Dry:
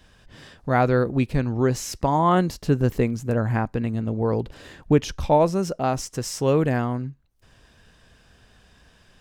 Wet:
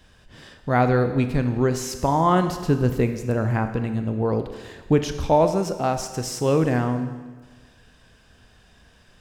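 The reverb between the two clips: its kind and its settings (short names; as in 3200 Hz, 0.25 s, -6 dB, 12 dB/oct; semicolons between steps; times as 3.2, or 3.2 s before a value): Schroeder reverb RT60 1.4 s, combs from 25 ms, DRR 8 dB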